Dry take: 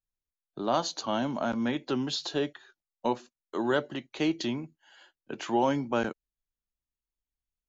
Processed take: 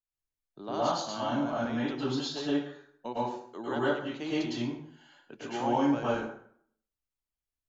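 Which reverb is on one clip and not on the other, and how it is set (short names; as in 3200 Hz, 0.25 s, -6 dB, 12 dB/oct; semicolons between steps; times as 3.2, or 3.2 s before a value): plate-style reverb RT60 0.62 s, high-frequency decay 0.7×, pre-delay 95 ms, DRR -8.5 dB; gain -10.5 dB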